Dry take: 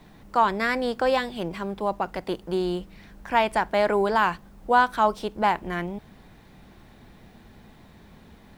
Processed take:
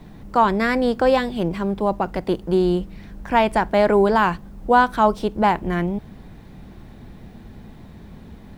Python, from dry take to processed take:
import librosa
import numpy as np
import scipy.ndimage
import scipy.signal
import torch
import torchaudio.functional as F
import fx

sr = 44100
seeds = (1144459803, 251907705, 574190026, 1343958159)

y = fx.low_shelf(x, sr, hz=470.0, db=9.5)
y = y * 10.0 ** (1.5 / 20.0)